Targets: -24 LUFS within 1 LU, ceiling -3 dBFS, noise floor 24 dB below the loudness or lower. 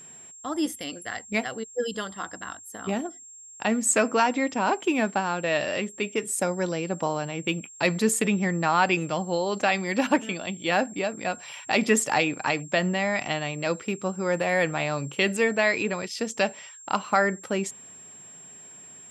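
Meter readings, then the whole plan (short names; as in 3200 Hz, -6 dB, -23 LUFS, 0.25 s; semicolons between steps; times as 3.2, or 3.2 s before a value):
steady tone 7500 Hz; tone level -44 dBFS; loudness -26.0 LUFS; peak -7.5 dBFS; loudness target -24.0 LUFS
-> notch 7500 Hz, Q 30; gain +2 dB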